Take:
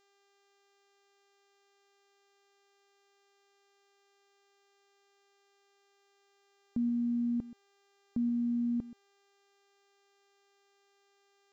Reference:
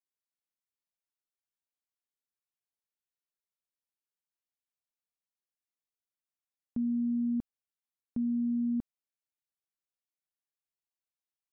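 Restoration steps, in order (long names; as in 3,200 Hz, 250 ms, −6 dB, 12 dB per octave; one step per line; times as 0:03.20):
hum removal 398.5 Hz, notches 19
echo removal 128 ms −17.5 dB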